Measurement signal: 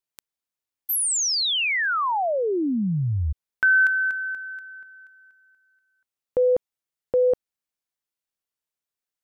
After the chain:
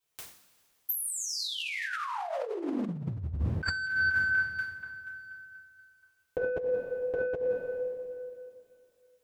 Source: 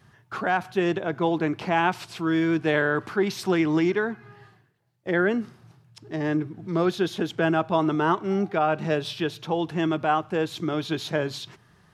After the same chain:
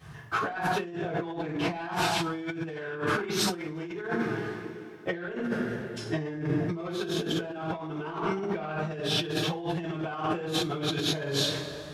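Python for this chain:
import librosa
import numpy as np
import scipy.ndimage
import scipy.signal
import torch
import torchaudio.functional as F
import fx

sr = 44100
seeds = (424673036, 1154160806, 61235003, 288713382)

y = 10.0 ** (-14.5 / 20.0) * np.tanh(x / 10.0 ** (-14.5 / 20.0))
y = fx.rev_double_slope(y, sr, seeds[0], early_s=0.51, late_s=2.6, knee_db=-18, drr_db=-9.5)
y = fx.over_compress(y, sr, threshold_db=-25.0, ratio=-1.0)
y = F.gain(torch.from_numpy(y), -7.0).numpy()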